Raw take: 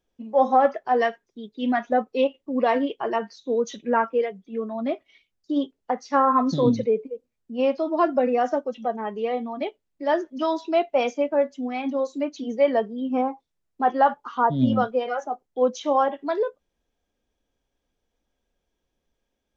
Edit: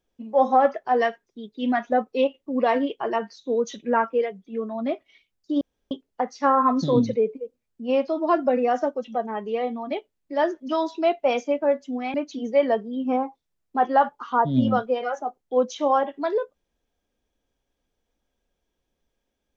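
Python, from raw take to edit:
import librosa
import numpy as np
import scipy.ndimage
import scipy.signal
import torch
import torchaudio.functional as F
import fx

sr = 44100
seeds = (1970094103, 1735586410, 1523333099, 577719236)

y = fx.edit(x, sr, fx.insert_room_tone(at_s=5.61, length_s=0.3),
    fx.cut(start_s=11.84, length_s=0.35), tone=tone)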